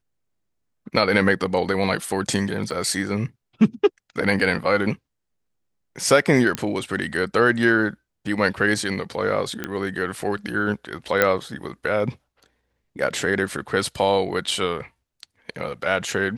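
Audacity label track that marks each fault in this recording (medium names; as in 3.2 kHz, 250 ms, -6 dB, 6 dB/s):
2.710000	2.710000	dropout 3.1 ms
6.550000	6.550000	pop -9 dBFS
9.640000	9.640000	pop -12 dBFS
11.220000	11.220000	pop -3 dBFS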